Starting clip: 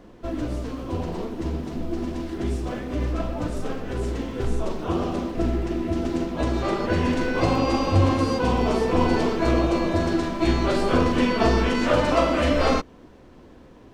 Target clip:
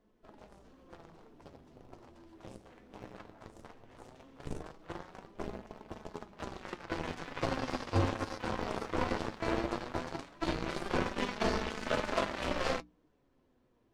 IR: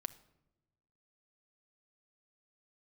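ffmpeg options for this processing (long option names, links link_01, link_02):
-af "aeval=exprs='0.501*(cos(1*acos(clip(val(0)/0.501,-1,1)))-cos(1*PI/2))+0.0891*(cos(7*acos(clip(val(0)/0.501,-1,1)))-cos(7*PI/2))':channel_layout=same,bandreject=frequency=60:width_type=h:width=6,bandreject=frequency=120:width_type=h:width=6,bandreject=frequency=180:width_type=h:width=6,bandreject=frequency=240:width_type=h:width=6,bandreject=frequency=300:width_type=h:width=6,flanger=delay=4.6:depth=5:regen=57:speed=0.17:shape=sinusoidal,volume=-6.5dB"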